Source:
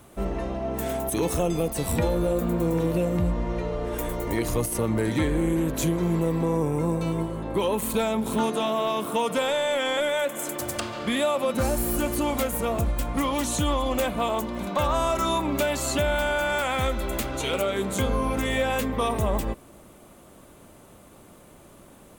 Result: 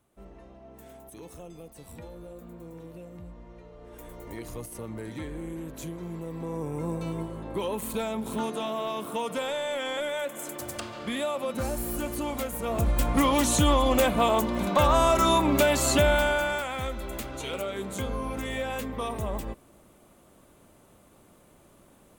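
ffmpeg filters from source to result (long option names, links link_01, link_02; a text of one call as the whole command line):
ffmpeg -i in.wav -af "volume=3dB,afade=type=in:start_time=3.74:duration=0.55:silence=0.446684,afade=type=in:start_time=6.26:duration=0.67:silence=0.446684,afade=type=in:start_time=12.62:duration=0.41:silence=0.354813,afade=type=out:start_time=16.06:duration=0.61:silence=0.316228" out.wav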